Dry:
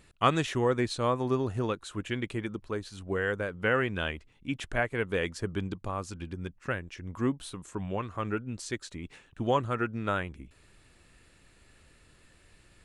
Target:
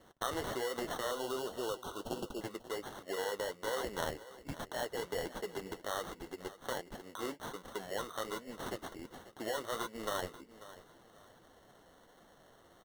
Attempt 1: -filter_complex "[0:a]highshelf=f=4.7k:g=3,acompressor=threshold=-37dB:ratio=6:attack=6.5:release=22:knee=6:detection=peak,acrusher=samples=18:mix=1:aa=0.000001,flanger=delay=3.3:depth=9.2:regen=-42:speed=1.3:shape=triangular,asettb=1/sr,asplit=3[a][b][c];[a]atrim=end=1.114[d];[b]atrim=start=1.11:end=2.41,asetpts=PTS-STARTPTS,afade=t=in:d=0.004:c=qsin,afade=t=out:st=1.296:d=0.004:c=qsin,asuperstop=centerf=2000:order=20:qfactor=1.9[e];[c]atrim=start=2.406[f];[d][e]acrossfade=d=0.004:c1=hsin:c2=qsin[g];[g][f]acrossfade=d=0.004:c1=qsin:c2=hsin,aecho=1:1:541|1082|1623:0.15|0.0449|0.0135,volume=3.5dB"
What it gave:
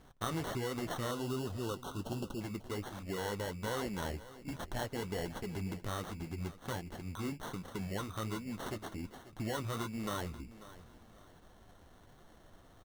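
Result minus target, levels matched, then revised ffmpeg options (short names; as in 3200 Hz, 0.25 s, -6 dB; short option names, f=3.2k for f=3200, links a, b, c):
500 Hz band -3.0 dB
-filter_complex "[0:a]highpass=f=510:t=q:w=1.8,highshelf=f=4.7k:g=3,acompressor=threshold=-37dB:ratio=6:attack=6.5:release=22:knee=6:detection=peak,acrusher=samples=18:mix=1:aa=0.000001,flanger=delay=3.3:depth=9.2:regen=-42:speed=1.3:shape=triangular,asettb=1/sr,asplit=3[a][b][c];[a]atrim=end=1.114[d];[b]atrim=start=1.11:end=2.41,asetpts=PTS-STARTPTS,afade=t=in:d=0.004:c=qsin,afade=t=out:st=1.296:d=0.004:c=qsin,asuperstop=centerf=2000:order=20:qfactor=1.9[e];[c]atrim=start=2.406[f];[d][e]acrossfade=d=0.004:c1=hsin:c2=qsin[g];[g][f]acrossfade=d=0.004:c1=qsin:c2=hsin,aecho=1:1:541|1082|1623:0.15|0.0449|0.0135,volume=3.5dB"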